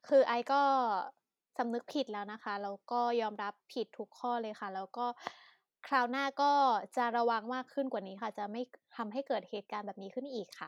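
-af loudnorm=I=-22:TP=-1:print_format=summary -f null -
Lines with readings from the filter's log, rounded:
Input Integrated:    -35.7 LUFS
Input True Peak:     -15.5 dBTP
Input LRA:             6.9 LU
Input Threshold:     -46.0 LUFS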